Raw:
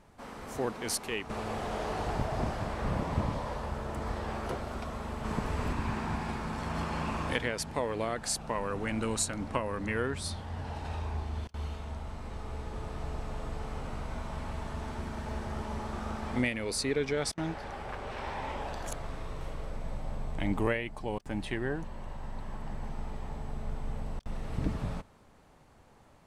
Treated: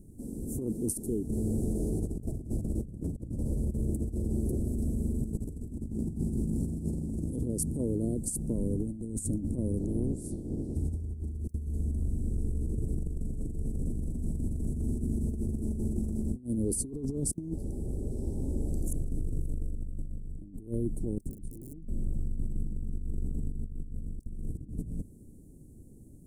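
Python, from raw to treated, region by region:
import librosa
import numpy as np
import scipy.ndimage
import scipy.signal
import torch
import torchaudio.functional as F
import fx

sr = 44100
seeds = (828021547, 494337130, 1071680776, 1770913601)

y = fx.spec_clip(x, sr, under_db=26, at=(9.77, 10.75), fade=0.02)
y = fx.lowpass(y, sr, hz=1300.0, slope=6, at=(9.77, 10.75), fade=0.02)
y = fx.chain(y, sr, fx.low_shelf(hz=290.0, db=7.5),
    fx.overflow_wrap(gain_db=21.5), at=(21.3, 21.88))
y = scipy.signal.sosfilt(scipy.signal.ellip(3, 1.0, 70, [330.0, 8800.0], 'bandstop', fs=sr, output='sos'), y)
y = fx.over_compress(y, sr, threshold_db=-39.0, ratio=-0.5)
y = y * 10.0 ** (8.0 / 20.0)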